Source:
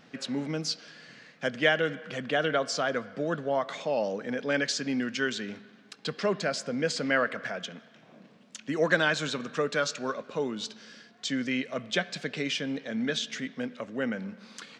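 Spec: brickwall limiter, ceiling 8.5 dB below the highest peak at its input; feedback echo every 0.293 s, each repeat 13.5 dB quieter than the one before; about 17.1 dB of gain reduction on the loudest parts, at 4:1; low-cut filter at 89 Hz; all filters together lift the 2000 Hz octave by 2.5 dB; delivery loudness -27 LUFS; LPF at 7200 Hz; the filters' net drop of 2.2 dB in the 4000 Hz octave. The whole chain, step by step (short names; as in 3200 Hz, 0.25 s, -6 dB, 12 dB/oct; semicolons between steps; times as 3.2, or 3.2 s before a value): HPF 89 Hz; LPF 7200 Hz; bell 2000 Hz +4 dB; bell 4000 Hz -4 dB; compressor 4:1, threshold -38 dBFS; limiter -32 dBFS; feedback echo 0.293 s, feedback 21%, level -13.5 dB; gain +15.5 dB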